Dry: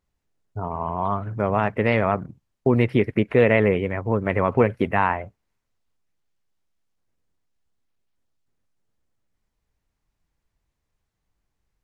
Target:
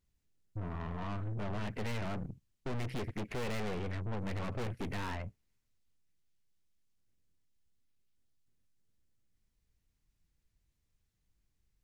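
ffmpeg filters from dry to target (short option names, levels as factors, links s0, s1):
-af "equalizer=f=840:w=0.57:g=-11,aeval=exprs='(tanh(79.4*val(0)+0.55)-tanh(0.55))/79.4':c=same,volume=1.26"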